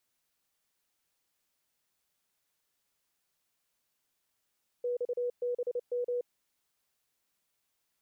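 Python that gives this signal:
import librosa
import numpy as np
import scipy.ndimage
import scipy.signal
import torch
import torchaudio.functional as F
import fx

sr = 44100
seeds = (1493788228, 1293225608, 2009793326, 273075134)

y = fx.morse(sr, text='XBM', wpm=29, hz=488.0, level_db=-29.0)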